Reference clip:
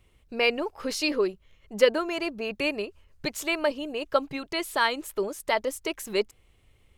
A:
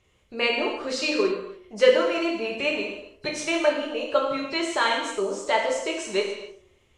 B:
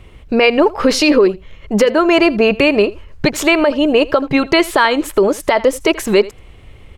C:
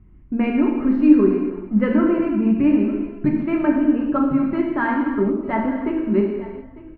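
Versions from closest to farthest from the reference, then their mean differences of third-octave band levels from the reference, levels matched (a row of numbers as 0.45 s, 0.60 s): B, A, C; 5.0 dB, 8.0 dB, 13.0 dB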